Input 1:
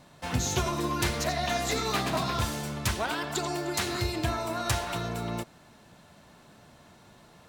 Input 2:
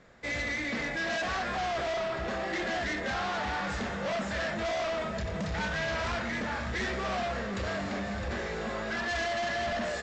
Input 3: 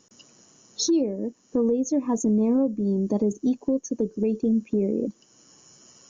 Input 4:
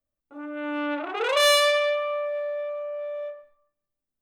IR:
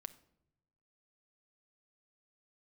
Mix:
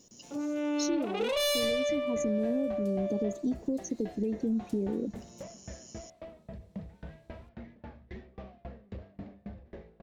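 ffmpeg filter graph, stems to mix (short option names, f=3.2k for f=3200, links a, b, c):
-filter_complex "[0:a]highpass=190,acompressor=threshold=-33dB:ratio=2.5,volume=-15.5dB[a];[1:a]lowpass=2k,lowshelf=f=390:g=5,aeval=exprs='val(0)*pow(10,-28*if(lt(mod(3.7*n/s,1),2*abs(3.7)/1000),1-mod(3.7*n/s,1)/(2*abs(3.7)/1000),(mod(3.7*n/s,1)-2*abs(3.7)/1000)/(1-2*abs(3.7)/1000))/20)':c=same,adelay=1350,volume=-5.5dB[b];[2:a]volume=1.5dB[c];[3:a]acontrast=69,volume=3dB[d];[a][c][d]amix=inputs=3:normalize=0,asoftclip=type=tanh:threshold=-5.5dB,acompressor=threshold=-33dB:ratio=2,volume=0dB[e];[b][e]amix=inputs=2:normalize=0,equalizer=f=1.4k:w=0.98:g=-14"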